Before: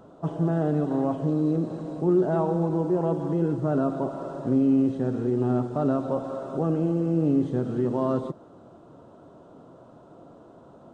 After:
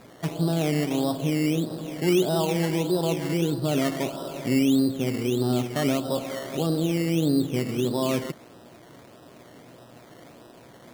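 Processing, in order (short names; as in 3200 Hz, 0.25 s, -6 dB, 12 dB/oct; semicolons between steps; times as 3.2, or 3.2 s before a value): buzz 120 Hz, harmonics 16, -56 dBFS -2 dB/oct; decimation with a swept rate 14×, swing 60% 1.6 Hz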